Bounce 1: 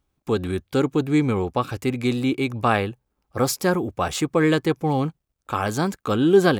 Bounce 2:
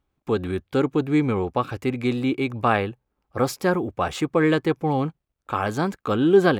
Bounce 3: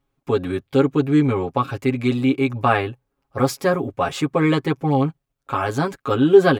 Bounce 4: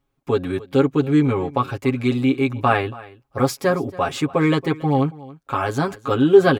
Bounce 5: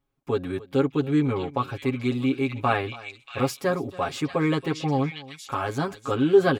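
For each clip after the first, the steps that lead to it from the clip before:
tone controls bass -2 dB, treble -9 dB
comb 7.3 ms, depth 91%
delay 279 ms -20 dB
repeats whose band climbs or falls 635 ms, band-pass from 3.1 kHz, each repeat 0.7 oct, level -2 dB; trim -5.5 dB

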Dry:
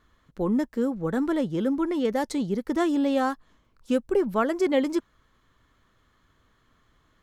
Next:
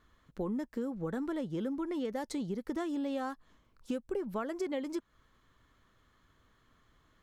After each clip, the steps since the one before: compression 5:1, threshold -30 dBFS, peak gain reduction 12 dB; trim -3 dB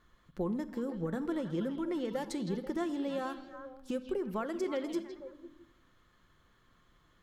repeats whose band climbs or falls 162 ms, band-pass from 3.5 kHz, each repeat -1.4 oct, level -5 dB; simulated room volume 3500 m³, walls furnished, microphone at 0.9 m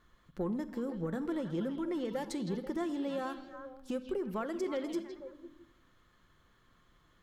saturation -24 dBFS, distortion -25 dB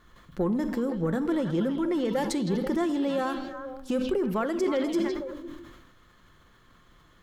decay stretcher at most 43 dB/s; trim +8 dB

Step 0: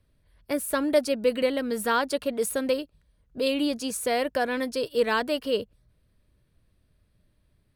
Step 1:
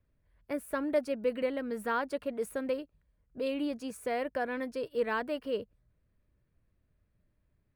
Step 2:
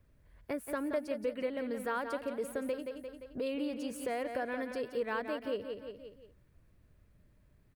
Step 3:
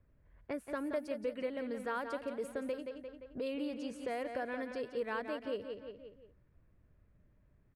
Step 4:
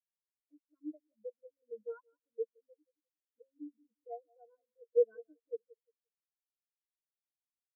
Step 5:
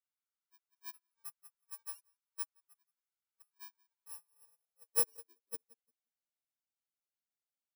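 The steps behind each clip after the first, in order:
high-order bell 6.7 kHz -10 dB 2.5 oct; trim -7 dB
on a send: feedback delay 174 ms, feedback 39%, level -9 dB; on the sum: compression 2:1, threshold -50 dBFS, peak gain reduction 14.5 dB; trim +8 dB
level-controlled noise filter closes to 2 kHz, open at -30.5 dBFS; trim -2.5 dB
rippled EQ curve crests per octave 1.8, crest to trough 15 dB; spectral contrast expander 4:1; trim +4.5 dB
bit-reversed sample order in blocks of 64 samples; comb 1.4 ms, depth 56%; high-pass sweep 1.1 kHz -> 220 Hz, 3.85–6.50 s; trim -6 dB

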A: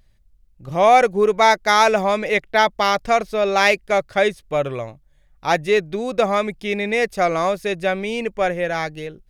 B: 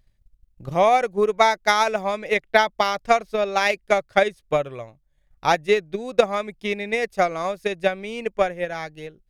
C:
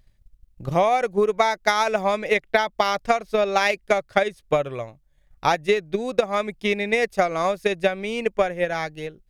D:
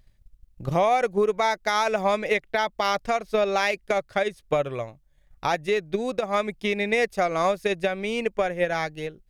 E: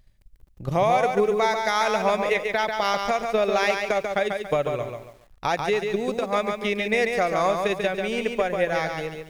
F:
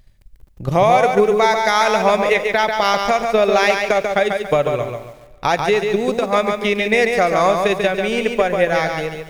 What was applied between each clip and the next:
transient shaper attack +11 dB, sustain -3 dB; trim -7.5 dB
compression 12:1, threshold -19 dBFS, peak gain reduction 11 dB; trim +4 dB
peak limiter -12.5 dBFS, peak gain reduction 9 dB
bit-crushed delay 141 ms, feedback 35%, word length 9-bit, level -5 dB
reverberation RT60 1.8 s, pre-delay 4 ms, DRR 16.5 dB; trim +7 dB

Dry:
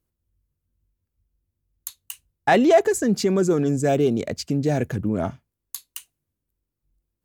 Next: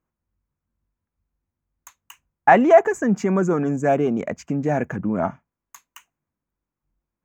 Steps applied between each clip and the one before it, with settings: FFT filter 120 Hz 0 dB, 180 Hz +9 dB, 410 Hz +4 dB, 950 Hz +15 dB, 1.6 kHz +11 dB, 2.4 kHz +7 dB, 4.3 kHz -14 dB, 6.6 kHz +2 dB, 10 kHz -17 dB, 15 kHz -5 dB; trim -6.5 dB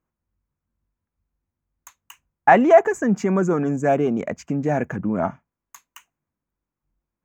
no audible change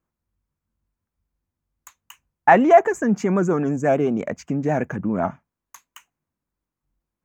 vibrato 8.1 Hz 59 cents

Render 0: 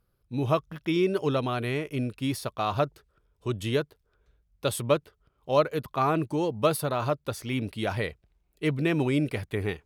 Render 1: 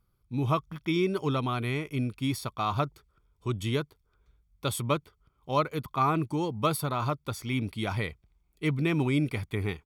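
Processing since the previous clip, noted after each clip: comb 0.9 ms, depth 47%; trim -2 dB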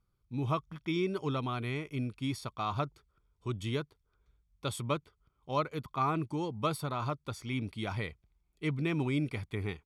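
low-pass 9.3 kHz 12 dB/octave; trim -5 dB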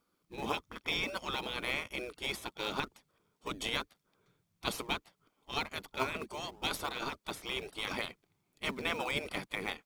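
spectral gate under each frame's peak -15 dB weak; in parallel at -8.5 dB: decimation with a swept rate 29×, swing 60% 3.3 Hz; on the sum: trim +8 dB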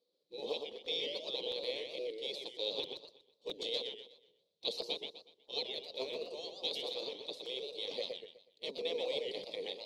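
two resonant band-passes 1.4 kHz, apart 3 oct; crackling interface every 0.66 s, samples 256, repeat, from 0.85 s; modulated delay 123 ms, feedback 35%, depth 202 cents, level -6 dB; trim +7.5 dB

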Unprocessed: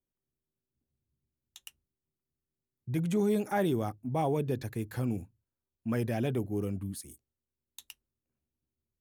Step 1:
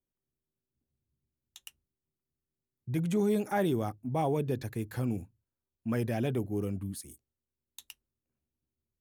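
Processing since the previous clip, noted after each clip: no audible change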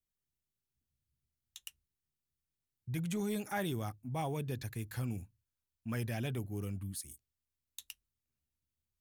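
peaking EQ 400 Hz -11.5 dB 2.9 oct; trim +1 dB

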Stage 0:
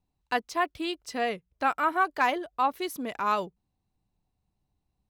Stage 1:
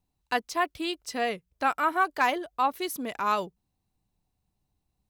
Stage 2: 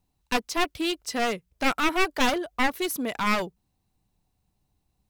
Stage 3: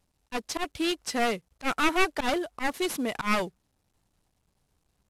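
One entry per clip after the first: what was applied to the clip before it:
treble shelf 4.8 kHz +5.5 dB
one-sided wavefolder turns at -27 dBFS; trim +4.5 dB
CVSD coder 64 kbps; slow attack 105 ms

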